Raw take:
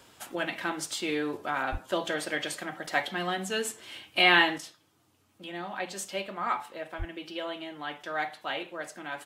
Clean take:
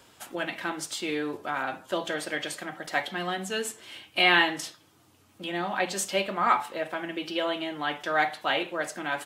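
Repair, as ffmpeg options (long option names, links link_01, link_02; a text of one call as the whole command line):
ffmpeg -i in.wav -filter_complex "[0:a]asplit=3[link_01][link_02][link_03];[link_01]afade=type=out:start_time=1.71:duration=0.02[link_04];[link_02]highpass=frequency=140:width=0.5412,highpass=frequency=140:width=1.3066,afade=type=in:start_time=1.71:duration=0.02,afade=type=out:start_time=1.83:duration=0.02[link_05];[link_03]afade=type=in:start_time=1.83:duration=0.02[link_06];[link_04][link_05][link_06]amix=inputs=3:normalize=0,asplit=3[link_07][link_08][link_09];[link_07]afade=type=out:start_time=6.98:duration=0.02[link_10];[link_08]highpass=frequency=140:width=0.5412,highpass=frequency=140:width=1.3066,afade=type=in:start_time=6.98:duration=0.02,afade=type=out:start_time=7.1:duration=0.02[link_11];[link_09]afade=type=in:start_time=7.1:duration=0.02[link_12];[link_10][link_11][link_12]amix=inputs=3:normalize=0,asetnsamples=nb_out_samples=441:pad=0,asendcmd='4.58 volume volume 7dB',volume=0dB" out.wav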